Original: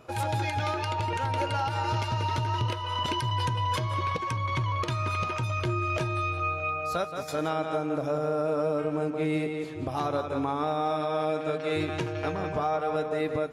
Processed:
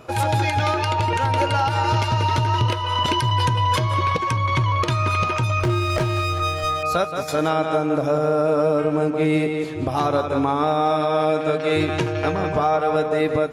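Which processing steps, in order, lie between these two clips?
5.63–6.83 running maximum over 9 samples; gain +8.5 dB

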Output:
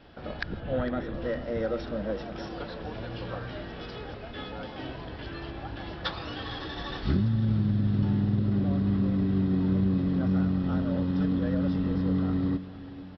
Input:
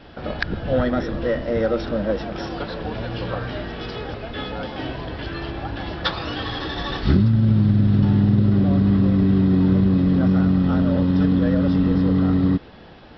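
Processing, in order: 0.6–1.14 LPF 4000 Hz 24 dB/oct; on a send: feedback echo 0.456 s, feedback 54%, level -16 dB; on the sum: gain -9 dB

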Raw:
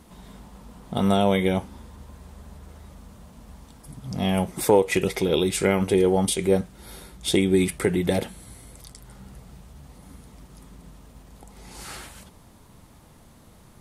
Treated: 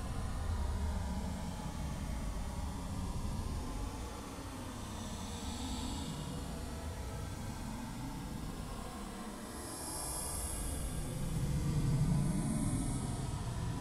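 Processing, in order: treble ducked by the level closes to 380 Hz, closed at -20 dBFS; Paulstretch 31×, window 0.05 s, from 3.52; flange 0.24 Hz, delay 5.7 ms, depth 9.1 ms, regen -56%; gain +10.5 dB

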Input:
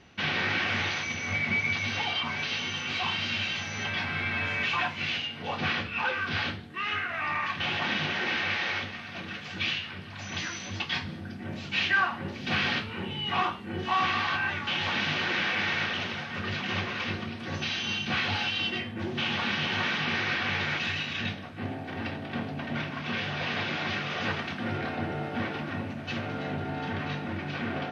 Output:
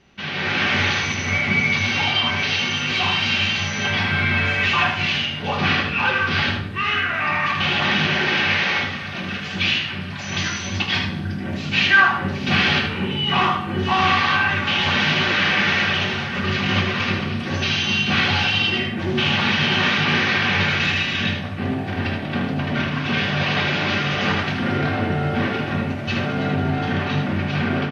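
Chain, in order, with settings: low shelf 120 Hz +3.5 dB; de-hum 56.72 Hz, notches 40; AGC gain up to 10 dB; echo 77 ms -7 dB; reverb RT60 1.1 s, pre-delay 5 ms, DRR 7 dB; gain -1.5 dB

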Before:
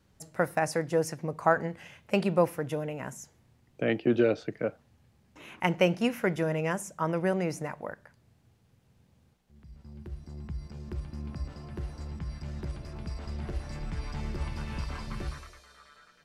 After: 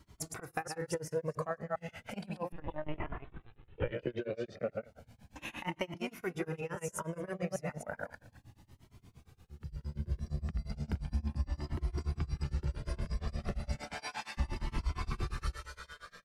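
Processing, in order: reverse delay 0.135 s, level -4 dB; 13.77–14.37 HPF 330 Hz -> 1200 Hz 12 dB/oct; compressor 10:1, threshold -38 dBFS, peak gain reduction 21 dB; tremolo 8.6 Hz, depth 97%; 2.52–3.92 LPC vocoder at 8 kHz pitch kept; on a send: echo 0.226 s -23.5 dB; on the sum: cascading flanger rising 0.34 Hz; gain +12.5 dB

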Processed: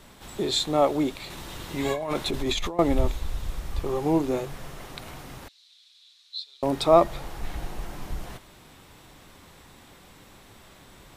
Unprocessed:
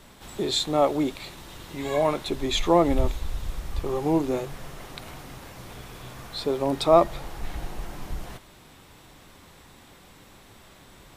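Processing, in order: 1.3–2.79 negative-ratio compressor -28 dBFS, ratio -1; 5.48–6.63 ladder band-pass 4200 Hz, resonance 75%

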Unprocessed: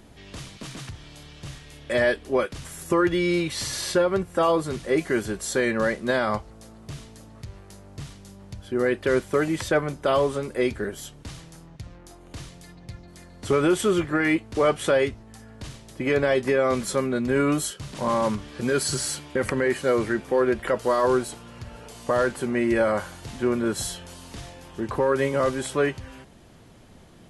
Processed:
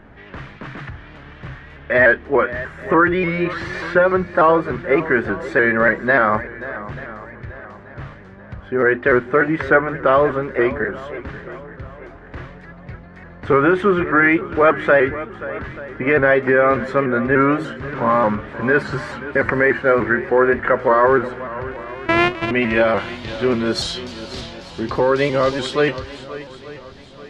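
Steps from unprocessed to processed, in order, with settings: 21.71–22.51 sample sorter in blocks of 128 samples; low-pass sweep 1700 Hz -> 4300 Hz, 21.42–23.69; notches 50/100/150/200/250/300/350 Hz; on a send: swung echo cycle 0.884 s, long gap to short 1.5:1, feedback 37%, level -15.5 dB; on the sum: shaped vibrato saw up 3.4 Hz, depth 100 cents; gain +5.5 dB

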